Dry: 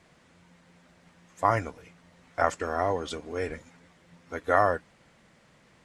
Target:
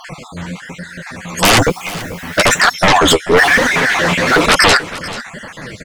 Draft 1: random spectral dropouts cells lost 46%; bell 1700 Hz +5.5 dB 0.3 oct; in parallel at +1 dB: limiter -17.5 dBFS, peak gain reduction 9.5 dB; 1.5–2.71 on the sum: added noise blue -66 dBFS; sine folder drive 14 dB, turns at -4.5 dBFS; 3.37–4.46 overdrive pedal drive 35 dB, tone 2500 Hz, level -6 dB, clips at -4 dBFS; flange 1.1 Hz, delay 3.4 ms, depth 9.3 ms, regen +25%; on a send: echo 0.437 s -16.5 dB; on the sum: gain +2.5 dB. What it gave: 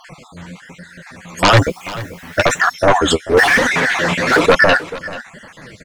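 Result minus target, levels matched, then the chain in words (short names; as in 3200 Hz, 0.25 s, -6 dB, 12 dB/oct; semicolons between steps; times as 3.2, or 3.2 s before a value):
sine folder: distortion -10 dB
random spectral dropouts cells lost 46%; bell 1700 Hz +5.5 dB 0.3 oct; in parallel at +1 dB: limiter -17.5 dBFS, peak gain reduction 9.5 dB; 1.5–2.71 on the sum: added noise blue -66 dBFS; sine folder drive 22 dB, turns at -4.5 dBFS; 3.37–4.46 overdrive pedal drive 35 dB, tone 2500 Hz, level -6 dB, clips at -4 dBFS; flange 1.1 Hz, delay 3.4 ms, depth 9.3 ms, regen +25%; on a send: echo 0.437 s -16.5 dB; on the sum: gain +2.5 dB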